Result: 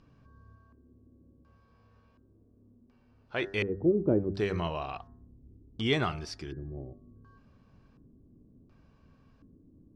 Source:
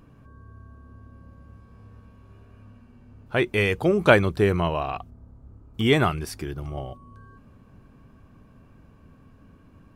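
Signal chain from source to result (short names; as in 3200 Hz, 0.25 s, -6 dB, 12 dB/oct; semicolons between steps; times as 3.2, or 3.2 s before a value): LFO low-pass square 0.69 Hz 340–5100 Hz; 0.55–3.43 tone controls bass -7 dB, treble -4 dB; de-hum 98.39 Hz, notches 19; gain -8.5 dB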